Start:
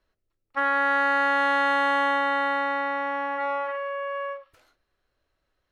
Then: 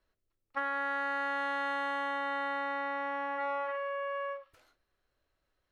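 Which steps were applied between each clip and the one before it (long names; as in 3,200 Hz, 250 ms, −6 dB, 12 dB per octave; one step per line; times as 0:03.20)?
downward compressor, threshold −27 dBFS, peak gain reduction 7.5 dB
level −4 dB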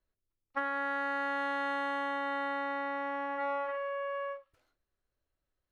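low-shelf EQ 400 Hz +7 dB
expander for the loud parts 1.5 to 1, over −51 dBFS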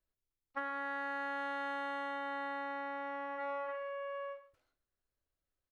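single-tap delay 123 ms −16.5 dB
level −5.5 dB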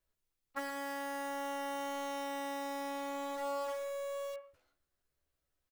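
in parallel at −7.5 dB: wrap-around overflow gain 42.5 dB
on the sum: double-tracking delay 14 ms −4 dB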